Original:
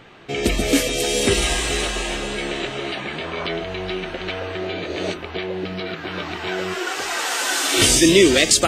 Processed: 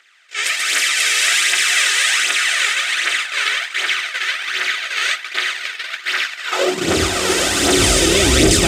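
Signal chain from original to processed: spectral levelling over time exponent 0.4; on a send: echo that smears into a reverb 528 ms, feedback 48%, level -3.5 dB; on the sum: phaser 1.3 Hz, delay 2.4 ms, feedback 51%; in parallel at -2 dB: peak limiter -1 dBFS, peak gain reduction 7 dB; on the sum: gate -6 dBFS, range -27 dB; high-pass sweep 1.7 kHz -> 60 Hz, 6.45–6.96 s; attacks held to a fixed rise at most 380 dB/s; trim -10 dB

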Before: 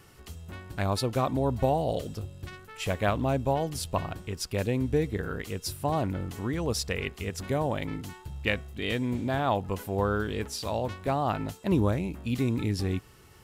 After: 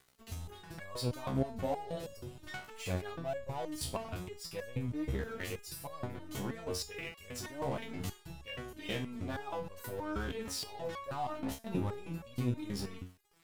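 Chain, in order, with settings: in parallel at +2.5 dB: compressor with a negative ratio -39 dBFS, ratio -1; on the sum: crossover distortion -36.5 dBFS; resonator arpeggio 6.3 Hz 67–560 Hz; trim +1 dB

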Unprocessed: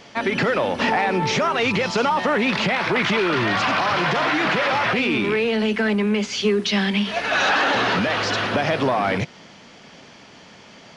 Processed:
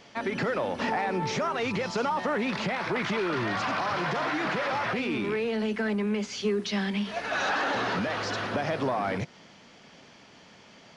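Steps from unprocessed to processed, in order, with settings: dynamic bell 2.9 kHz, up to -5 dB, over -35 dBFS, Q 1.3; trim -7.5 dB

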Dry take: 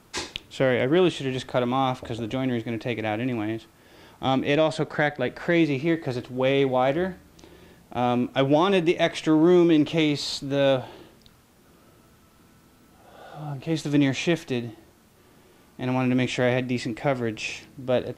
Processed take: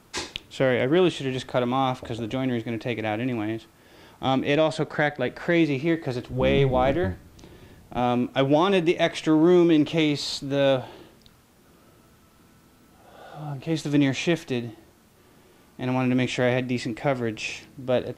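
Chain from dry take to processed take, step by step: 6.28–8.00 s: octave divider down 1 oct, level +1 dB

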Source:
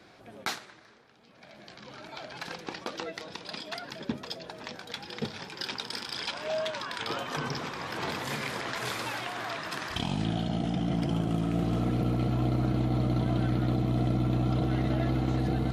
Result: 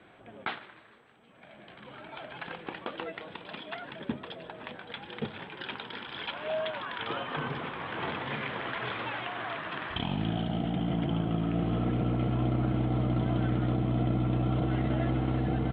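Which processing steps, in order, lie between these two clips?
elliptic low-pass 3.3 kHz, stop band 50 dB; on a send: frequency-shifting echo 150 ms, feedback 53%, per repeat +110 Hz, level -21 dB; on the sum: MP2 64 kbps 32 kHz

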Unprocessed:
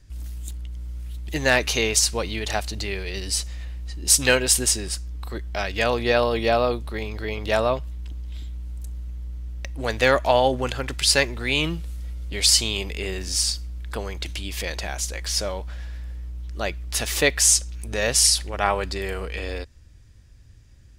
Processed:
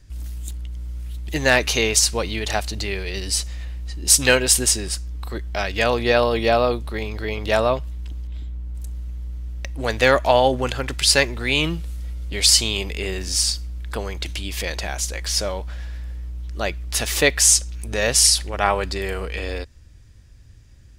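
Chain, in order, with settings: 8.27–8.75 s: treble shelf 2.4 kHz -11 dB; trim +2.5 dB

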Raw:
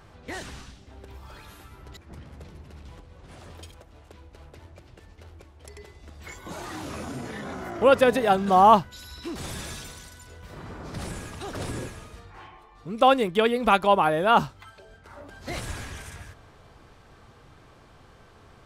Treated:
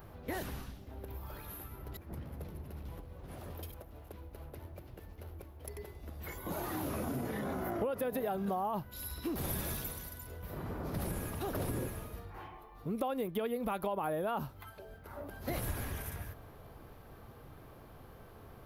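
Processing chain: peak limiter -14.5 dBFS, peak gain reduction 11 dB; FFT filter 600 Hz 0 dB, 8.3 kHz -19 dB, 12 kHz +5 dB; compression 10:1, threshold -32 dBFS, peak gain reduction 13.5 dB; treble shelf 2.9 kHz +9 dB

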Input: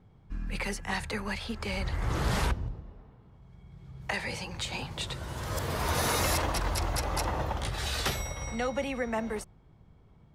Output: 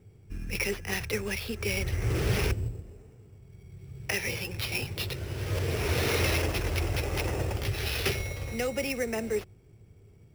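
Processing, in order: fifteen-band graphic EQ 100 Hz +12 dB, 400 Hz +12 dB, 1 kHz -8 dB, 2.5 kHz +12 dB; sample-rate reducer 7.9 kHz, jitter 0%; trim -3.5 dB

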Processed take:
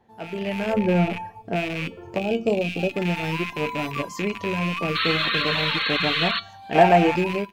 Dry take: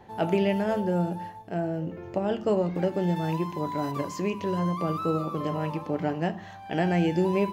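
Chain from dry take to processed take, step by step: rattle on loud lows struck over -36 dBFS, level -21 dBFS; 4.95–6.40 s: painted sound noise 1–4.4 kHz -27 dBFS; feedback comb 230 Hz, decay 0.64 s, harmonics all, mix 80%; feedback echo behind a high-pass 191 ms, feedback 70%, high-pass 5.4 kHz, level -20 dB; level rider gain up to 13.5 dB; 0.73–1.56 s: tilt shelf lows +5.5 dB, about 1.5 kHz; reverb removal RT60 0.53 s; 2.19–2.94 s: time-frequency box 860–2300 Hz -12 dB; 6.75–7.16 s: peaking EQ 790 Hz +13 dB 1.6 oct; hard clipper -7.5 dBFS, distortion -31 dB; trim +1.5 dB

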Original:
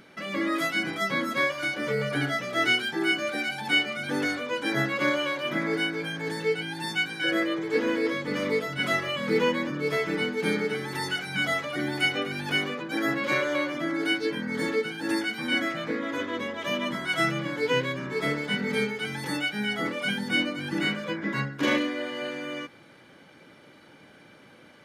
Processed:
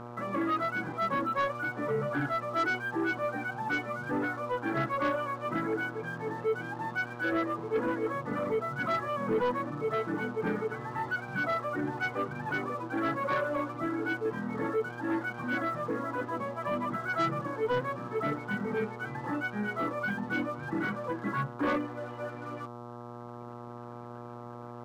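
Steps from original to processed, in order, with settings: reverb removal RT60 2 s; four-pole ladder low-pass 1.5 kHz, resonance 45%; mains buzz 120 Hz, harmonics 11, -51 dBFS -3 dB/octave; waveshaping leveller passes 2

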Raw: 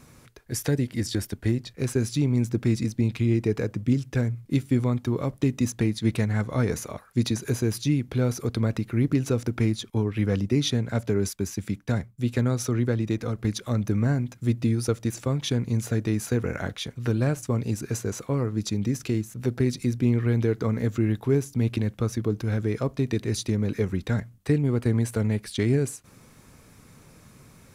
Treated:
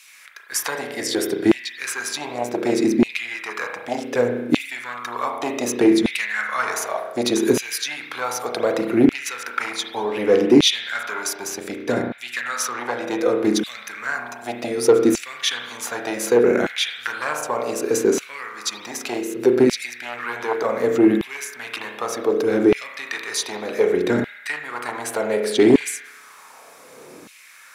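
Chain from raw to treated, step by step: spring tank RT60 1 s, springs 33 ms, chirp 70 ms, DRR 3 dB; sine folder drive 6 dB, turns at -6.5 dBFS; LFO high-pass saw down 0.66 Hz 290–2700 Hz; trim -1.5 dB

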